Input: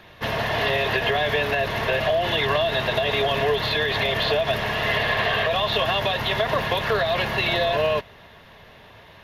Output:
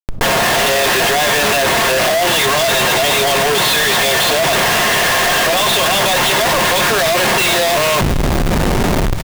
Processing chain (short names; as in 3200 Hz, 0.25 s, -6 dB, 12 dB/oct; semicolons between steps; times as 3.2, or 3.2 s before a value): HPF 130 Hz 12 dB/oct; low shelf 220 Hz -6.5 dB; notches 50/100/150/200 Hz; comb 5.6 ms, depth 38%; in parallel at -1 dB: limiter -17.5 dBFS, peak gain reduction 8.5 dB; on the sum: AGC gain up to 7.5 dB; Schmitt trigger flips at -30.5 dBFS; thinning echo 0.215 s, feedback 68%, high-pass 1100 Hz, level -20 dB; on a send at -17.5 dB: reverb RT60 0.35 s, pre-delay 3 ms; on the sum: fast leveller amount 70%